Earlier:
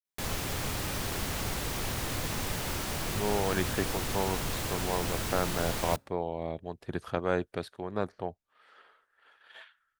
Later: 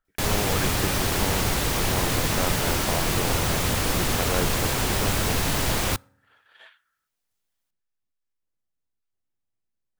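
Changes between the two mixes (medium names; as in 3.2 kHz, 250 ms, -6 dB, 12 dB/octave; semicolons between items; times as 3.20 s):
speech: entry -2.95 s; background +9.5 dB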